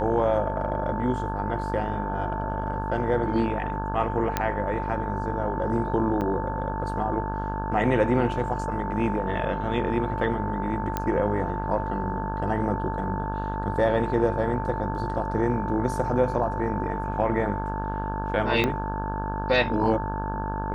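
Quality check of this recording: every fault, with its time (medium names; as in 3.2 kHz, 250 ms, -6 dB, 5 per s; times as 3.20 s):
buzz 50 Hz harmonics 34 -31 dBFS
whine 890 Hz -31 dBFS
4.37 s: pop -9 dBFS
6.21–6.22 s: dropout 6.5 ms
10.97 s: pop -12 dBFS
18.64 s: pop -11 dBFS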